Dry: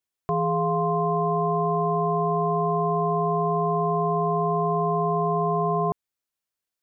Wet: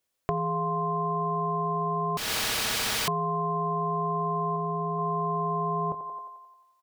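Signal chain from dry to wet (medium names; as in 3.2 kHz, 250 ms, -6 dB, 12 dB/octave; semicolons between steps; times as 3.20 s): peaking EQ 540 Hz +8.5 dB 0.31 oct; doubling 25 ms -13.5 dB; thinning echo 88 ms, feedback 64%, high-pass 400 Hz, level -12.5 dB; 2.17–3.08 s: integer overflow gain 24 dB; compression, threshold -33 dBFS, peak gain reduction 13 dB; 4.56–4.99 s: low-pass 1.1 kHz 6 dB/octave; trim +6.5 dB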